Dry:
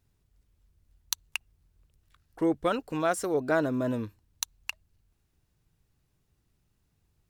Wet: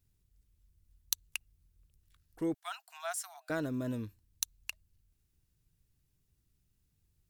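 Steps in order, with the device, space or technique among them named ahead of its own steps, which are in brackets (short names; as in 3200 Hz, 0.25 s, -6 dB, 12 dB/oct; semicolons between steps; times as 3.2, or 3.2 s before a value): smiley-face EQ (low shelf 110 Hz +4.5 dB; bell 820 Hz -7 dB 1.9 oct; high shelf 6700 Hz +7.5 dB); 2.54–3.5 Chebyshev high-pass 650 Hz, order 10; gain -5.5 dB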